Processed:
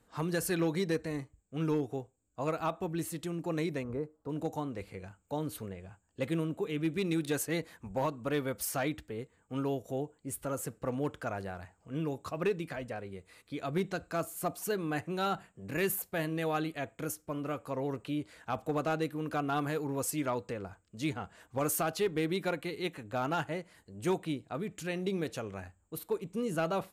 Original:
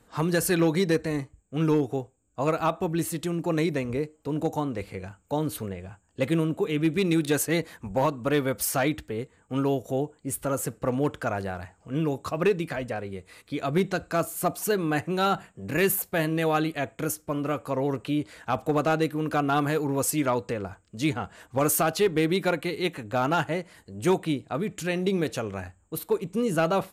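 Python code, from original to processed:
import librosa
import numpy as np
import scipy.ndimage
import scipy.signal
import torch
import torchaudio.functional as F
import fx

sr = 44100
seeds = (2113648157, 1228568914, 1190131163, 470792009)

y = fx.high_shelf_res(x, sr, hz=1800.0, db=-11.0, q=1.5, at=(3.82, 4.28), fade=0.02)
y = y * 10.0 ** (-8.0 / 20.0)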